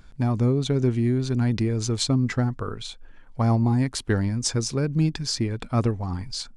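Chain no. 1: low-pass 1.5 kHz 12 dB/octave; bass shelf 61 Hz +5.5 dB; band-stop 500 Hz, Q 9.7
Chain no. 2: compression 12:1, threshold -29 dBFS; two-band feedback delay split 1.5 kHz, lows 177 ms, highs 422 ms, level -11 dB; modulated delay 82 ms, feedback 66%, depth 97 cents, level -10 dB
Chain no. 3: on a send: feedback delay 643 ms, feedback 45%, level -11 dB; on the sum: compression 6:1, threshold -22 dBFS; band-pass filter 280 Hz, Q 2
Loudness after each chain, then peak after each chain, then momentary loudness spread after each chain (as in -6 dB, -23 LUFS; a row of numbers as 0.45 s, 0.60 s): -24.0 LUFS, -33.0 LUFS, -33.5 LUFS; -10.0 dBFS, -17.5 dBFS, -19.5 dBFS; 8 LU, 3 LU, 7 LU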